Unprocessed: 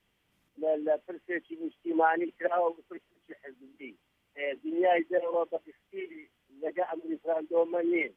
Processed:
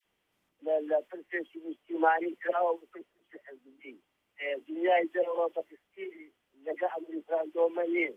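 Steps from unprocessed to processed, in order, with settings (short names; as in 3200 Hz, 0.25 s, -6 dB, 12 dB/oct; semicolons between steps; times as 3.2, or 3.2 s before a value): tone controls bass -10 dB, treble +6 dB; dispersion lows, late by 48 ms, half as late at 1100 Hz; mismatched tape noise reduction decoder only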